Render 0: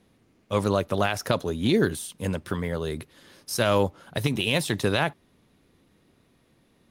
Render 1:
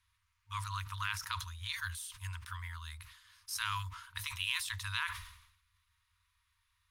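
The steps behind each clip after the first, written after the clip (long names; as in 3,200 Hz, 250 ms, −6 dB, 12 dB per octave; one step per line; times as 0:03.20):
brick-wall band-stop 100–920 Hz
level that may fall only so fast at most 72 dB per second
level −8.5 dB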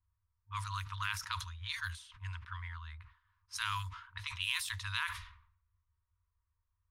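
low-pass that shuts in the quiet parts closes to 560 Hz, open at −34 dBFS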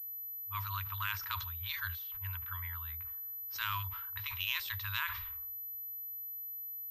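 switching amplifier with a slow clock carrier 12,000 Hz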